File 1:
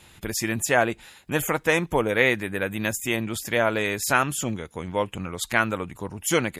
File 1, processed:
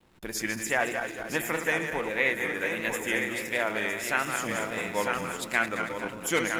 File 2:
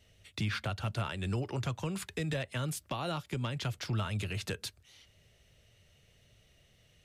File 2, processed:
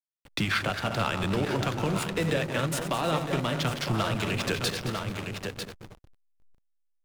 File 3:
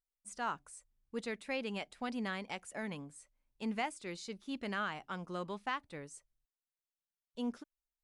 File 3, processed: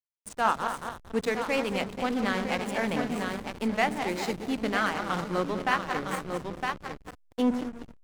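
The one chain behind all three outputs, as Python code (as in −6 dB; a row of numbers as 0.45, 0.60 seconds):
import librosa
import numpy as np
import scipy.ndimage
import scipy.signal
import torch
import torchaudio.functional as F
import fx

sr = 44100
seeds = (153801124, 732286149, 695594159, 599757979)

p1 = fx.reverse_delay_fb(x, sr, ms=112, feedback_pct=68, wet_db=-7.0)
p2 = fx.peak_eq(p1, sr, hz=92.0, db=-13.5, octaves=1.0)
p3 = p2 + fx.echo_feedback(p2, sr, ms=954, feedback_pct=16, wet_db=-8.0, dry=0)
p4 = fx.dynamic_eq(p3, sr, hz=2000.0, q=2.0, threshold_db=-39.0, ratio=4.0, max_db=6)
p5 = fx.rider(p4, sr, range_db=3, speed_s=0.5)
p6 = fx.vibrato(p5, sr, rate_hz=1.5, depth_cents=57.0)
p7 = fx.rev_fdn(p6, sr, rt60_s=1.1, lf_ratio=1.2, hf_ratio=0.35, size_ms=60.0, drr_db=14.5)
p8 = fx.backlash(p7, sr, play_db=-39.5)
y = p8 * 10.0 ** (-30 / 20.0) / np.sqrt(np.mean(np.square(p8)))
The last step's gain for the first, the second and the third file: −7.5, +10.0, +12.5 decibels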